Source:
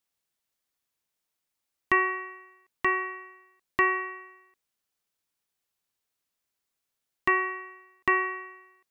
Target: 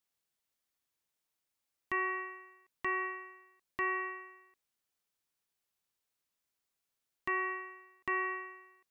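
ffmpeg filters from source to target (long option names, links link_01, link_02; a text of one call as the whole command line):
ffmpeg -i in.wav -af "alimiter=limit=-20.5dB:level=0:latency=1:release=202,volume=-3dB" out.wav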